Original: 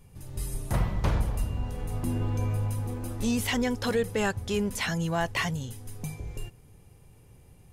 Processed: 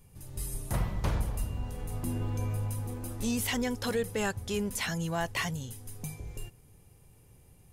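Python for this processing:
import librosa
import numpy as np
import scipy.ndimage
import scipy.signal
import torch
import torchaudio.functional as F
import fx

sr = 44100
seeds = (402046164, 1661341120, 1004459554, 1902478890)

y = fx.high_shelf(x, sr, hz=7000.0, db=7.5)
y = F.gain(torch.from_numpy(y), -4.0).numpy()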